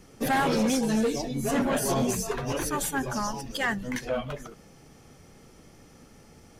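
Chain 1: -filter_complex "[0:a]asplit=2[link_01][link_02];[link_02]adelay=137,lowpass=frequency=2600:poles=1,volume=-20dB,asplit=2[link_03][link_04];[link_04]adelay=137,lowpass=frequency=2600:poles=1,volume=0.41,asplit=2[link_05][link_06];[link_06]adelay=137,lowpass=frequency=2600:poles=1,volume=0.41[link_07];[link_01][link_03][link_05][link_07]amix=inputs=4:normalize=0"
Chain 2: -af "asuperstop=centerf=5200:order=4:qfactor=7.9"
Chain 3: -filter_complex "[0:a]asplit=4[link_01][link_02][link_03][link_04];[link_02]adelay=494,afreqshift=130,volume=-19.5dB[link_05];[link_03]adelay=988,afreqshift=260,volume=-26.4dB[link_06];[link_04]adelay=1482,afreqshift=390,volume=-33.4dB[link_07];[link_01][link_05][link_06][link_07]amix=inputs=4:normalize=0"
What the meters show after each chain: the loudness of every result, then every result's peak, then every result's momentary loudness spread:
−27.5, −27.5, −27.5 LKFS; −18.0, −17.0, −18.0 dBFS; 8, 8, 8 LU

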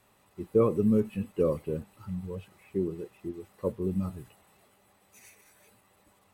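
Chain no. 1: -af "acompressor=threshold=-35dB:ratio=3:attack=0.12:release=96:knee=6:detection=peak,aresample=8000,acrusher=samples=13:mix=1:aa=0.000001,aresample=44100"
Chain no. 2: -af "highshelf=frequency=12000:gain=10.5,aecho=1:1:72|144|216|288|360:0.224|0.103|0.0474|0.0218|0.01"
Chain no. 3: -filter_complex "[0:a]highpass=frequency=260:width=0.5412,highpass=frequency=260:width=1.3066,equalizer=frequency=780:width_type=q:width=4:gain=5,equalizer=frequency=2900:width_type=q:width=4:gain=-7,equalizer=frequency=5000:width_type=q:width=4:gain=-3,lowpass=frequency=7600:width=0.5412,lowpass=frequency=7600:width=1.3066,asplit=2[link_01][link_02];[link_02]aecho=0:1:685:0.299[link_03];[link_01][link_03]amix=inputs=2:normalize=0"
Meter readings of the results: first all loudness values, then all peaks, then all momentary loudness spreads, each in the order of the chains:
−41.0, −30.5, −32.0 LKFS; −26.0, −12.0, −12.5 dBFS; 11, 16, 18 LU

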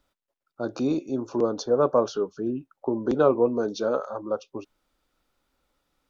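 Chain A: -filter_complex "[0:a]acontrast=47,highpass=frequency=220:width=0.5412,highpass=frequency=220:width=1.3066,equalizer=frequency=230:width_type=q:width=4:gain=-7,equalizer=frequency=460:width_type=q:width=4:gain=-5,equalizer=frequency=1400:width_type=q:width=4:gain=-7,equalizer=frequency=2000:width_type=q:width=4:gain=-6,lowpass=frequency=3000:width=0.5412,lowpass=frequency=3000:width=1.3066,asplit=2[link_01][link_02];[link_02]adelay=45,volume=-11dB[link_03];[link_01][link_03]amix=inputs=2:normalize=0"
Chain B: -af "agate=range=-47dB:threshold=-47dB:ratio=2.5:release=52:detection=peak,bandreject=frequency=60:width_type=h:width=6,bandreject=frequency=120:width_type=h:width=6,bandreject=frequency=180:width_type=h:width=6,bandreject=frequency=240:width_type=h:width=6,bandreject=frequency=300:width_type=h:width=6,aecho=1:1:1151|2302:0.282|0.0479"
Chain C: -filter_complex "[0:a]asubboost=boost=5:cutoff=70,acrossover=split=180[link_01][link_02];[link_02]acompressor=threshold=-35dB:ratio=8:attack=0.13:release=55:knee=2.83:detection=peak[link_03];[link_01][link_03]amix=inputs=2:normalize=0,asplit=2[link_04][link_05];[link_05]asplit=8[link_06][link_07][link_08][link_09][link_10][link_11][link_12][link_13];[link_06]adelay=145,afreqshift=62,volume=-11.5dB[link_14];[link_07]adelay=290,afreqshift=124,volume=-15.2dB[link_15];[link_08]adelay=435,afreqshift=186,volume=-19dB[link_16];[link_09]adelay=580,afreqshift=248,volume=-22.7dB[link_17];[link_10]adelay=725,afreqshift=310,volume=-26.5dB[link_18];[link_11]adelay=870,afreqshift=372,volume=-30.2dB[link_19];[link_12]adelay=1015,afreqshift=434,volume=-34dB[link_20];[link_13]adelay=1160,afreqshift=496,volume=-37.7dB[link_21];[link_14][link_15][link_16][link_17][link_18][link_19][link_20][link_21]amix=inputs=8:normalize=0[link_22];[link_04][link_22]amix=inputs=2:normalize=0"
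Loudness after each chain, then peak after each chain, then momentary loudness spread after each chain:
−23.5, −26.0, −38.0 LKFS; −4.5, −7.5, −24.0 dBFS; 11, 17, 9 LU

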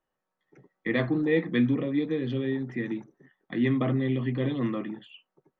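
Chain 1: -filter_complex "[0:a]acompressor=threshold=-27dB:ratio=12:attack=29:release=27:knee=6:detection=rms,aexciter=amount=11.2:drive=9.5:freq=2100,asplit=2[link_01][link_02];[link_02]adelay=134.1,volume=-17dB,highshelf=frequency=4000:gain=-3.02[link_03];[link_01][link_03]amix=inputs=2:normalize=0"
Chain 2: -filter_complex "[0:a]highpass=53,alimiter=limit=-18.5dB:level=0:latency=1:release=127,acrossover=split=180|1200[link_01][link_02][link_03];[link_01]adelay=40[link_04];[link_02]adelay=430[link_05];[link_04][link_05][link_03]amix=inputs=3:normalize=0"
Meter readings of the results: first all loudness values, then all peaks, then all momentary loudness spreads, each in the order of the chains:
−21.0, −31.5 LKFS; −2.0, −17.0 dBFS; 9, 8 LU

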